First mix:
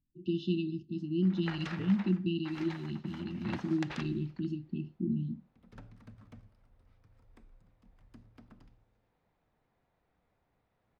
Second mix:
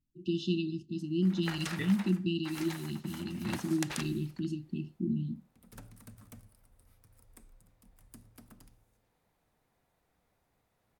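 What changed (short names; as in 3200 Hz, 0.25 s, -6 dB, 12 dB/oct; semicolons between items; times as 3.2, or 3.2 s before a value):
second voice: remove running mean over 29 samples; master: remove air absorption 210 m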